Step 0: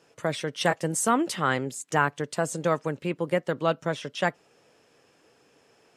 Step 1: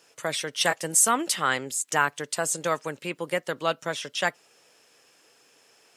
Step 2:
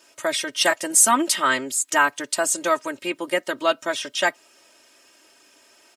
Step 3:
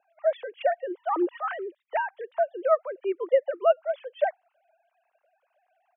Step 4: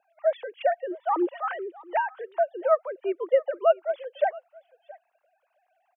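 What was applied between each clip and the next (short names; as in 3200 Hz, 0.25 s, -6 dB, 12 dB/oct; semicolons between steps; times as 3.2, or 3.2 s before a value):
tilt +3 dB/oct
comb 3.2 ms, depth 96%; gain +2 dB
sine-wave speech; band-pass 490 Hz, Q 1.6
dynamic EQ 850 Hz, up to +4 dB, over -42 dBFS, Q 4.5; echo 0.672 s -22 dB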